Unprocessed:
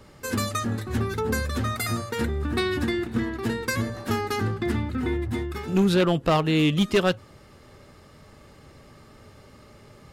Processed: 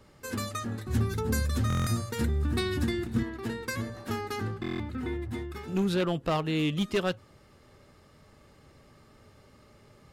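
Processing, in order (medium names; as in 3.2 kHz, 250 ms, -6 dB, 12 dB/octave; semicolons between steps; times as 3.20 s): 0.86–3.23 s: tone controls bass +8 dB, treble +7 dB; buffer glitch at 1.68/4.61 s, samples 1024, times 7; trim -7 dB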